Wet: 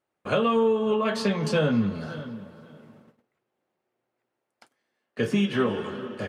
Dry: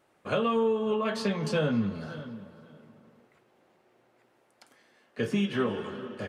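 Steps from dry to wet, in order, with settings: gate -56 dBFS, range -19 dB; trim +4 dB

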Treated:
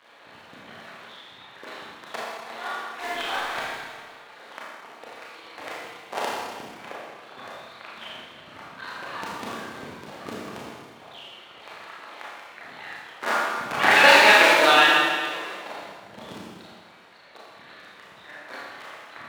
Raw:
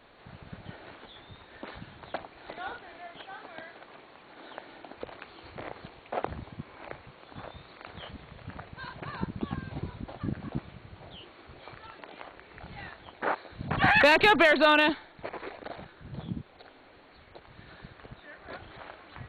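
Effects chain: cycle switcher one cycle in 2, muted; reverb removal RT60 1.5 s; 4.43–5.17 s: expander -48 dBFS; frequency weighting A; 2.95–3.61 s: waveshaping leveller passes 3; Schroeder reverb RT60 1.7 s, combs from 27 ms, DRR -6.5 dB; trim +4 dB

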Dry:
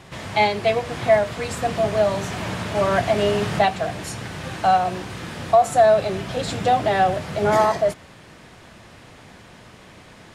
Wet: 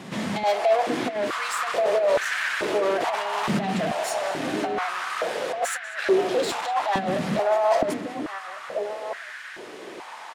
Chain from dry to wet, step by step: compressor with a negative ratio -21 dBFS, ratio -0.5; echo from a far wall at 240 m, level -10 dB; saturation -23.5 dBFS, distortion -9 dB; on a send: band-passed feedback delay 193 ms, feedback 80%, band-pass 2.1 kHz, level -10 dB; on the sum: step-sequenced high-pass 2.3 Hz 210–1600 Hz

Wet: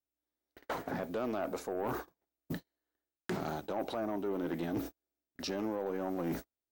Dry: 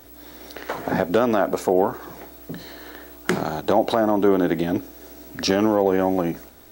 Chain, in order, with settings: gate -32 dBFS, range -51 dB; reverse; compression 6:1, threshold -31 dBFS, peak gain reduction 17 dB; reverse; saturation -27.5 dBFS, distortion -15 dB; loudspeaker Doppler distortion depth 0.12 ms

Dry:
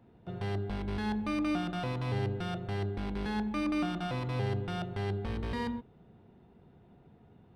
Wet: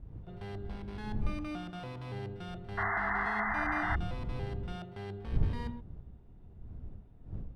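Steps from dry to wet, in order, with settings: wind noise 85 Hz -31 dBFS; pre-echo 45 ms -16 dB; painted sound noise, 2.77–3.96 s, 650–2100 Hz -25 dBFS; trim -8 dB

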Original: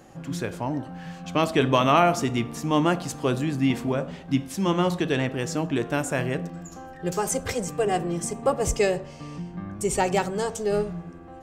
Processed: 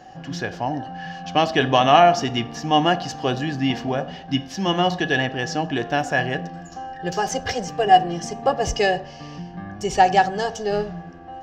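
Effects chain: resonant high shelf 7.1 kHz -10.5 dB, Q 3; small resonant body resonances 750/1700/2900 Hz, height 16 dB, ringing for 50 ms

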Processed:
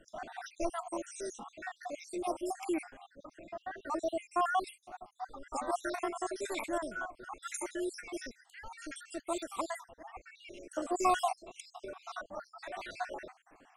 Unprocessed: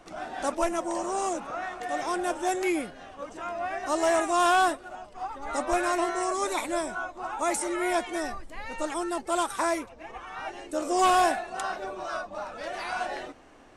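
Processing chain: random holes in the spectrogram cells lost 64%; 3.06–4.67 s: treble shelf 3.7 kHz -11 dB; trim -4.5 dB

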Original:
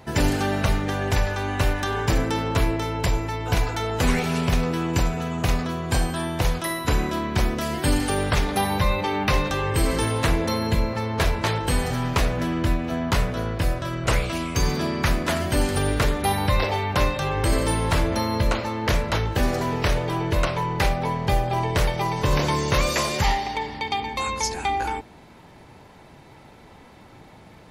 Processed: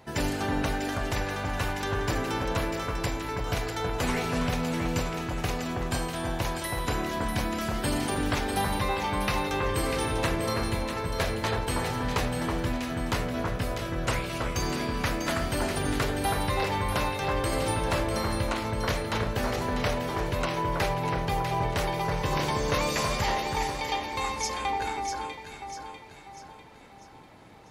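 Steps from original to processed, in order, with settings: bass shelf 180 Hz -5 dB; on a send: echo whose repeats swap between lows and highs 323 ms, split 1.7 kHz, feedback 66%, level -2.5 dB; on the sum: trim -5.5 dB

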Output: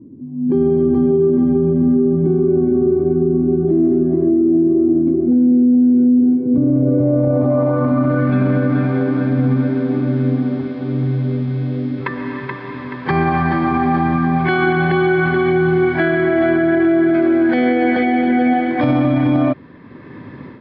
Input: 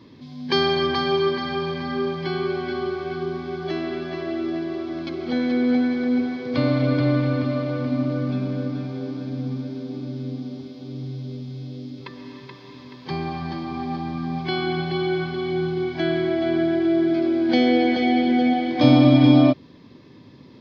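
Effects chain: low-pass sweep 290 Hz -> 1.7 kHz, 6.53–8.27 s; level rider gain up to 10.5 dB; peak limiter -10.5 dBFS, peak gain reduction 9 dB; trim +3 dB

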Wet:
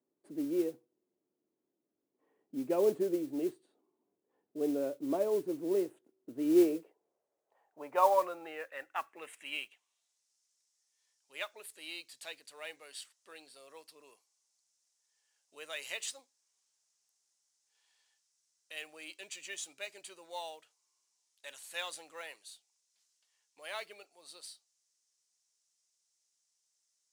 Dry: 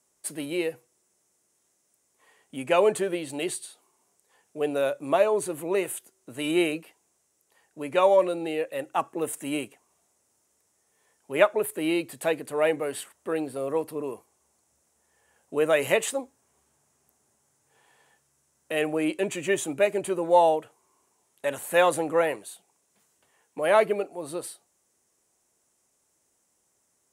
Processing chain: band-pass sweep 300 Hz -> 4.8 kHz, 6.37–10.34 s; modulation noise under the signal 23 dB

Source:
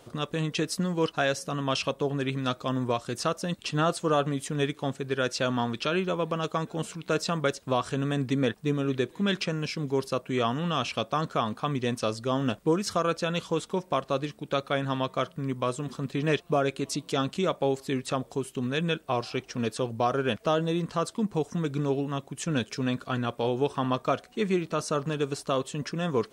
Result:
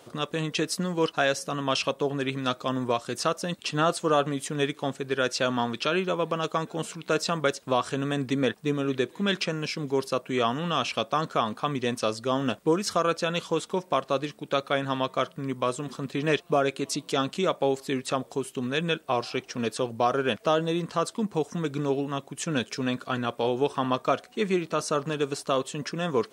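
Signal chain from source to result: high-pass 220 Hz 6 dB/octave; trim +2.5 dB

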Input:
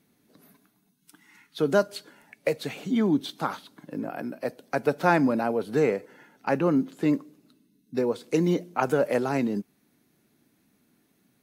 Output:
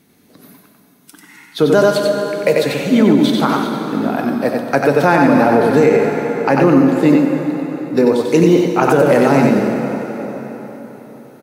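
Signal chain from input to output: delay 93 ms -4 dB; plate-style reverb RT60 4.4 s, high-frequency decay 0.75×, DRR 4.5 dB; loudness maximiser +13 dB; trim -1 dB

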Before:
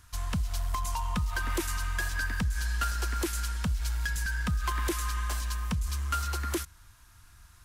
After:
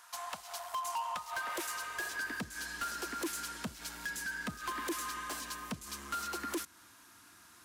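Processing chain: in parallel at +2 dB: compression, threshold -38 dBFS, peak gain reduction 12 dB; on the sum: high-pass sweep 750 Hz -> 280 Hz, 1.22–2.48 s; saturation -26.5 dBFS, distortion -8 dB; trim -5 dB

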